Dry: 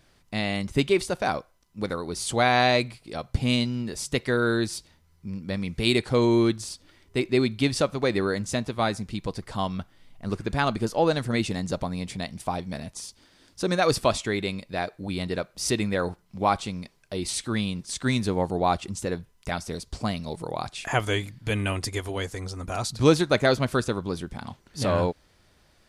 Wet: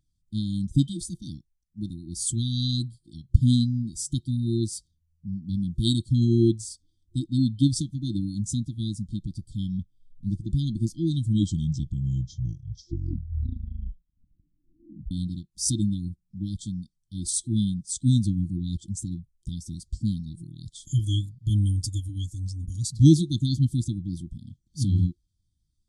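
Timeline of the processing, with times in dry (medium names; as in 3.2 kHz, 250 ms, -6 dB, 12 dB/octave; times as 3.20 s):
11.01 s: tape stop 4.10 s
whole clip: FFT band-reject 350–3100 Hz; ten-band graphic EQ 250 Hz -4 dB, 500 Hz -8 dB, 4 kHz -5 dB, 8 kHz +5 dB; spectral contrast expander 1.5:1; trim +7 dB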